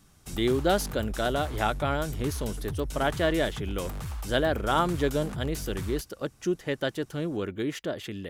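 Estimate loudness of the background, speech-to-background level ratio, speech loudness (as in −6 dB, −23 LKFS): −37.5 LKFS, 8.0 dB, −29.5 LKFS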